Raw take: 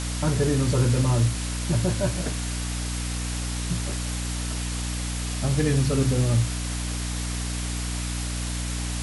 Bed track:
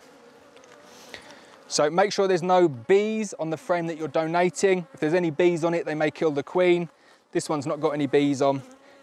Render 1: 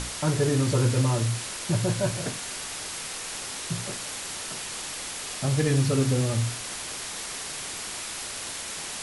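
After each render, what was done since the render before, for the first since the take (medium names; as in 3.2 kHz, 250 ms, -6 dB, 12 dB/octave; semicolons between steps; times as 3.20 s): hum notches 60/120/180/240/300 Hz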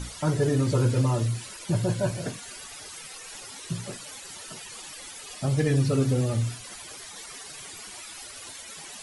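noise reduction 14 dB, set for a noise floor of -36 dBFS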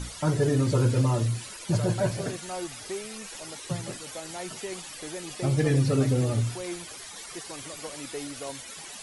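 add bed track -16.5 dB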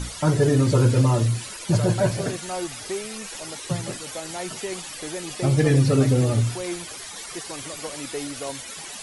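trim +5 dB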